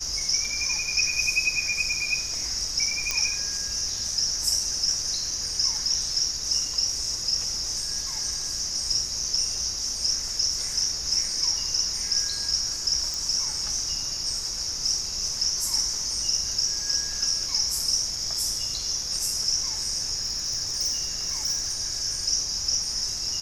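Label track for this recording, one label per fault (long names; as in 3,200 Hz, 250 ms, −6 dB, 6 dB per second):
3.110000	3.110000	click −10 dBFS
13.140000	13.140000	click
20.210000	21.740000	clipping −22 dBFS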